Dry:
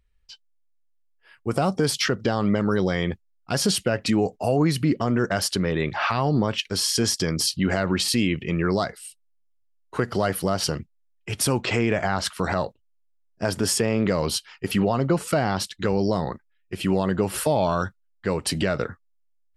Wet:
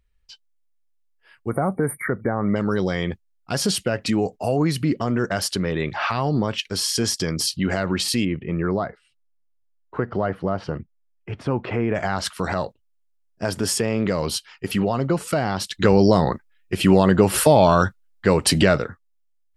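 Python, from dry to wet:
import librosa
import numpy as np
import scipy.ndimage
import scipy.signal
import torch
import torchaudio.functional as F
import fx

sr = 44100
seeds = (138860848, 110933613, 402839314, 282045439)

y = fx.spec_erase(x, sr, start_s=1.49, length_s=1.07, low_hz=2300.0, high_hz=8600.0)
y = fx.lowpass(y, sr, hz=1600.0, slope=12, at=(8.24, 11.94), fade=0.02)
y = fx.edit(y, sr, fx.clip_gain(start_s=15.69, length_s=3.1, db=7.5), tone=tone)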